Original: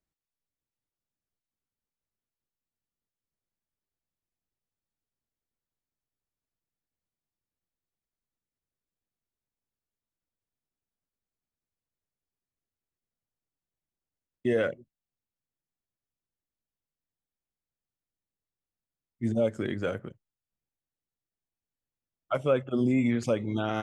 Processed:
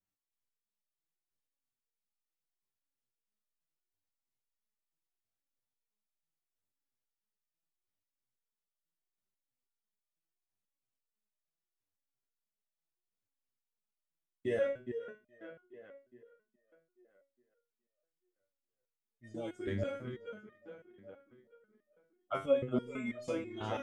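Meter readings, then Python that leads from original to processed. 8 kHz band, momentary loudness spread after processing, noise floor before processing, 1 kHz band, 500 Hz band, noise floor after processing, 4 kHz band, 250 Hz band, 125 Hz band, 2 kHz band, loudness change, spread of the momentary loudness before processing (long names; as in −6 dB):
can't be measured, 23 LU, below −85 dBFS, −7.0 dB, −6.0 dB, below −85 dBFS, −7.0 dB, −11.5 dB, −10.5 dB, −8.0 dB, −8.5 dB, 9 LU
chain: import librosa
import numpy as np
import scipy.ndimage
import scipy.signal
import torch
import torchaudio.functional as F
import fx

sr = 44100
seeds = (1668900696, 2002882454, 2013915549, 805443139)

y = fx.echo_tape(x, sr, ms=417, feedback_pct=55, wet_db=-7.5, lp_hz=3600.0, drive_db=8.0, wow_cents=37)
y = fx.resonator_held(y, sr, hz=6.1, low_hz=97.0, high_hz=610.0)
y = y * 10.0 ** (4.5 / 20.0)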